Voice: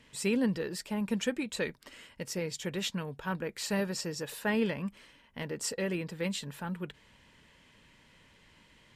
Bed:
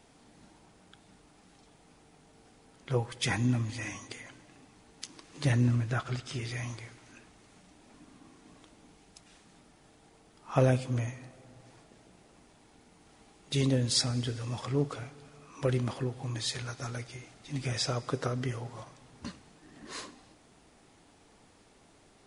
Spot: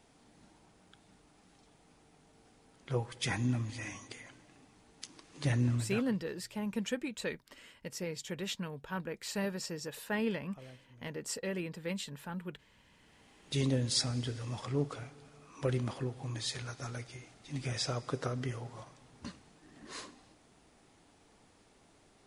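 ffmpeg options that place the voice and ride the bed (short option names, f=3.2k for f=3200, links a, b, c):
-filter_complex "[0:a]adelay=5650,volume=-4dB[a];[1:a]volume=20.5dB,afade=t=out:st=5.75:d=0.43:silence=0.0630957,afade=t=in:st=12.72:d=0.72:silence=0.0595662[b];[a][b]amix=inputs=2:normalize=0"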